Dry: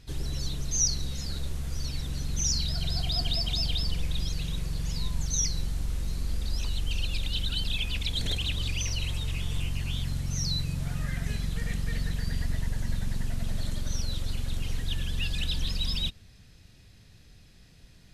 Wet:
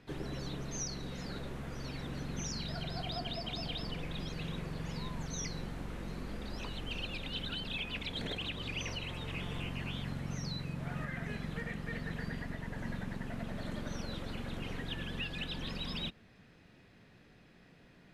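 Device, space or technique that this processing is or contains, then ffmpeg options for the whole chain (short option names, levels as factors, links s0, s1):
DJ mixer with the lows and highs turned down: -filter_complex "[0:a]acrossover=split=170 2500:gain=0.112 1 0.112[s0][s1][s2];[s0][s1][s2]amix=inputs=3:normalize=0,alimiter=level_in=2.37:limit=0.0631:level=0:latency=1:release=375,volume=0.422,volume=1.5"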